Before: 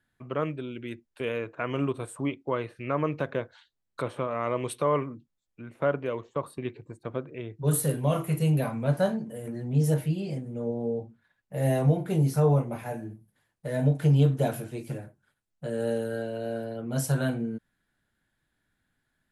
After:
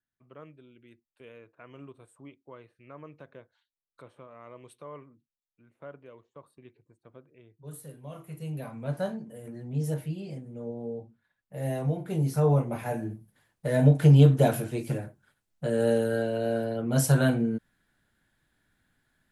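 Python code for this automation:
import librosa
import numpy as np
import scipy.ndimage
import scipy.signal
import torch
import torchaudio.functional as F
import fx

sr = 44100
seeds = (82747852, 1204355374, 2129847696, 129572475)

y = fx.gain(x, sr, db=fx.line((8.0, -18.5), (8.95, -6.0), (11.89, -6.0), (13.06, 4.5)))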